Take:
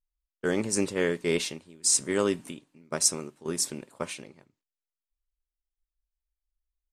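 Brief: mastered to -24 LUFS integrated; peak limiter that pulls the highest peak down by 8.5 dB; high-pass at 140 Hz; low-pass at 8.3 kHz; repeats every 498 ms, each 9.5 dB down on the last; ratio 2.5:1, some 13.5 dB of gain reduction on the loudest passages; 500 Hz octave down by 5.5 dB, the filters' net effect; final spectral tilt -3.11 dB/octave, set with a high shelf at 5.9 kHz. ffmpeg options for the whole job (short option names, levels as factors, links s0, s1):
-af "highpass=140,lowpass=8300,equalizer=f=500:t=o:g=-7,highshelf=f=5900:g=-9,acompressor=threshold=0.00501:ratio=2.5,alimiter=level_in=3.35:limit=0.0631:level=0:latency=1,volume=0.299,aecho=1:1:498|996|1494|1992:0.335|0.111|0.0365|0.012,volume=15"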